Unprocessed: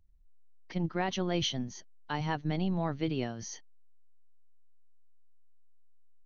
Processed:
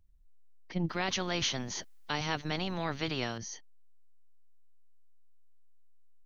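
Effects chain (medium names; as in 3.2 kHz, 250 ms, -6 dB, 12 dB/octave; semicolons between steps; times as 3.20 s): 0.89–3.38 s: spectrum-flattening compressor 2:1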